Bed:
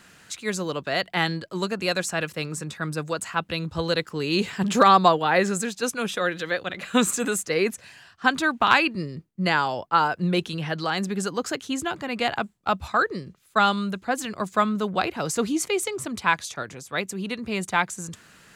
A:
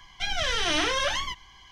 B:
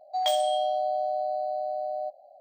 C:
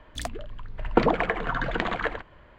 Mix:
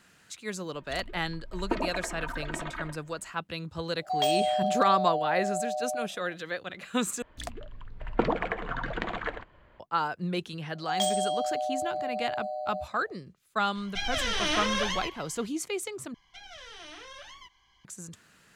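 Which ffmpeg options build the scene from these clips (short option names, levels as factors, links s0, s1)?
-filter_complex "[3:a]asplit=2[s0][s1];[2:a]asplit=2[s2][s3];[1:a]asplit=2[s4][s5];[0:a]volume=0.398[s6];[s0]aecho=1:1:3.2:0.86[s7];[s3]equalizer=f=7500:t=o:w=1.1:g=10[s8];[s4]asplit=2[s9][s10];[s10]adelay=150,highpass=300,lowpass=3400,asoftclip=type=hard:threshold=0.0668,volume=0.224[s11];[s9][s11]amix=inputs=2:normalize=0[s12];[s5]acrossover=split=320|1100[s13][s14][s15];[s13]acompressor=threshold=0.00282:ratio=2[s16];[s14]acompressor=threshold=0.01:ratio=2.5[s17];[s15]acompressor=threshold=0.02:ratio=3[s18];[s16][s17][s18]amix=inputs=3:normalize=0[s19];[s6]asplit=3[s20][s21][s22];[s20]atrim=end=7.224[s23];[s1]atrim=end=2.58,asetpts=PTS-STARTPTS,volume=0.531[s24];[s21]atrim=start=9.796:end=16.144[s25];[s19]atrim=end=1.71,asetpts=PTS-STARTPTS,volume=0.211[s26];[s22]atrim=start=17.846[s27];[s7]atrim=end=2.58,asetpts=PTS-STARTPTS,volume=0.266,afade=t=in:d=0.004:c=hsin,afade=t=out:st=2.576:d=0.004:c=hsin,adelay=740[s28];[s2]atrim=end=2.4,asetpts=PTS-STARTPTS,volume=0.891,afade=t=in:d=0.004:c=hsin,afade=t=out:st=2.396:d=0.004:c=hsin,adelay=3960[s29];[s8]atrim=end=2.4,asetpts=PTS-STARTPTS,volume=0.668,afade=t=in:d=0.004:c=hsin,afade=t=out:st=2.396:d=0.004:c=hsin,adelay=473634S[s30];[s12]atrim=end=1.71,asetpts=PTS-STARTPTS,volume=0.708,afade=t=in:d=0.004:c=hsin,afade=t=out:st=1.706:d=0.004:c=hsin,adelay=13750[s31];[s23][s24]acrossfade=d=0.004:c1=hsin:c2=hsin[s32];[s32][s25]acrossfade=d=0.004:c1=hsin:c2=hsin[s33];[s33][s26]acrossfade=d=0.004:c1=hsin:c2=hsin[s34];[s34][s27]acrossfade=d=0.004:c1=hsin:c2=hsin[s35];[s35][s28][s29][s30][s31]amix=inputs=5:normalize=0"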